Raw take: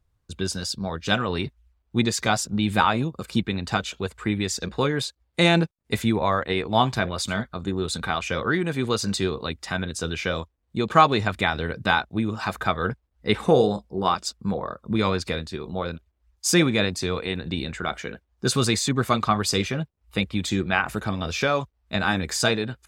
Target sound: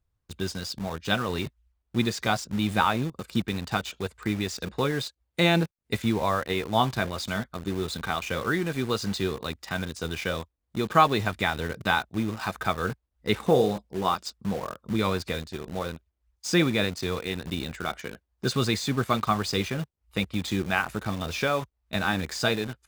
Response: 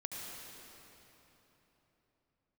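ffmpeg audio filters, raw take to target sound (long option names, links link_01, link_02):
-filter_complex "[0:a]acrossover=split=5700[link_01][link_02];[link_02]acompressor=threshold=-40dB:ratio=4:attack=1:release=60[link_03];[link_01][link_03]amix=inputs=2:normalize=0,asplit=2[link_04][link_05];[link_05]acrusher=bits=4:mix=0:aa=0.000001,volume=-5dB[link_06];[link_04][link_06]amix=inputs=2:normalize=0,volume=-7dB"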